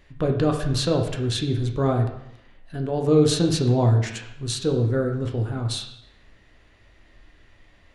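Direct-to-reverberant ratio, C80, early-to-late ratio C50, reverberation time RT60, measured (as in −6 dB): 2.5 dB, 10.0 dB, 7.0 dB, 0.75 s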